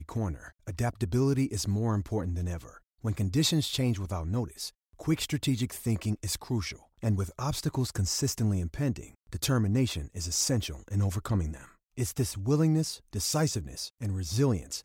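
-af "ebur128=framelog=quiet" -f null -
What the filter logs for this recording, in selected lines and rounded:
Integrated loudness:
  I:         -30.3 LUFS
  Threshold: -40.5 LUFS
Loudness range:
  LRA:         1.9 LU
  Threshold: -50.6 LUFS
  LRA low:   -31.6 LUFS
  LRA high:  -29.7 LUFS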